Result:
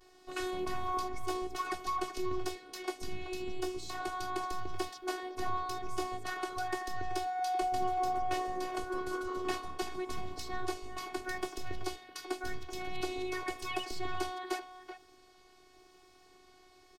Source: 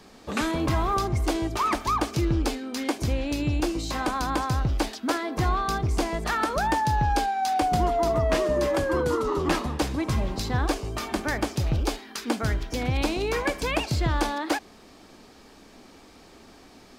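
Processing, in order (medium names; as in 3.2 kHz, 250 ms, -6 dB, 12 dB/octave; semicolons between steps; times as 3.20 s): vibrato 0.89 Hz 79 cents; robot voice 369 Hz; speakerphone echo 380 ms, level -10 dB; trim -8 dB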